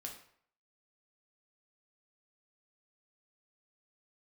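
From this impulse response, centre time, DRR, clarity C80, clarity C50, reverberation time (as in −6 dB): 24 ms, 0.5 dB, 10.5 dB, 7.0 dB, 0.60 s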